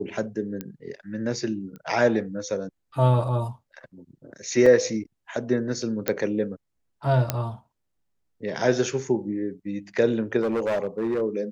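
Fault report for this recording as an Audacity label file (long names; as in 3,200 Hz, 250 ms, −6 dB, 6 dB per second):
0.610000	0.610000	click −17 dBFS
1.760000	1.760000	click −29 dBFS
4.660000	4.660000	drop-out 3.8 ms
6.080000	6.080000	click −7 dBFS
7.300000	7.300000	click −7 dBFS
10.410000	11.220000	clipping −21 dBFS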